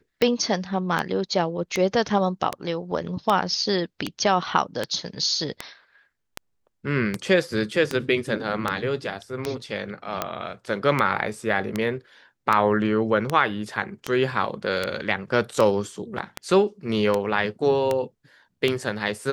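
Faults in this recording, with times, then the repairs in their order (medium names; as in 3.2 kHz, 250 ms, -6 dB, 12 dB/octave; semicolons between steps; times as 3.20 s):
tick 78 rpm -9 dBFS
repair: de-click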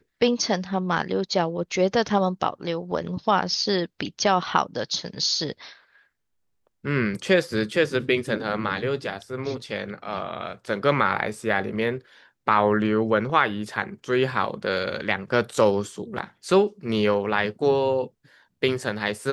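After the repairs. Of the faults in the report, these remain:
nothing left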